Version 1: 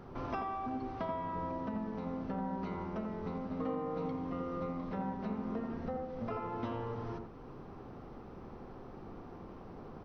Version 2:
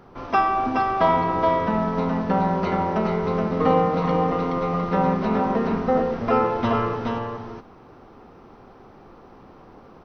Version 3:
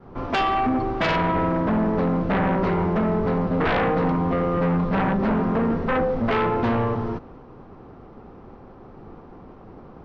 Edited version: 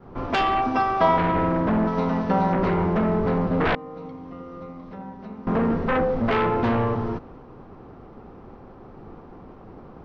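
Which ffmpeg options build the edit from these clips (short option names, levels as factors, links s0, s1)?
-filter_complex "[1:a]asplit=2[s0][s1];[2:a]asplit=4[s2][s3][s4][s5];[s2]atrim=end=0.622[s6];[s0]atrim=start=0.618:end=1.182[s7];[s3]atrim=start=1.178:end=1.872[s8];[s1]atrim=start=1.868:end=2.532[s9];[s4]atrim=start=2.528:end=3.752[s10];[0:a]atrim=start=3.748:end=5.472[s11];[s5]atrim=start=5.468[s12];[s6][s7]acrossfade=d=0.004:c1=hsin:c2=hsin[s13];[s13][s8]acrossfade=d=0.004:c1=hsin:c2=hsin[s14];[s14][s9]acrossfade=d=0.004:c1=hsin:c2=hsin[s15];[s15][s10]acrossfade=d=0.004:c1=hsin:c2=hsin[s16];[s16][s11]acrossfade=d=0.004:c1=hsin:c2=hsin[s17];[s17][s12]acrossfade=d=0.004:c1=hsin:c2=hsin"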